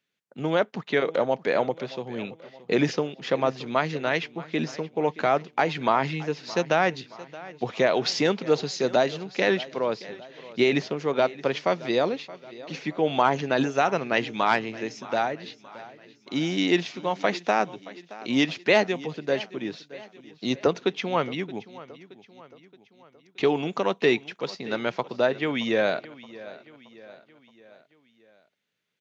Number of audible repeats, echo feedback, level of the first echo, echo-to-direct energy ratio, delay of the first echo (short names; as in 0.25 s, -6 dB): 3, 51%, -18.5 dB, -17.0 dB, 0.623 s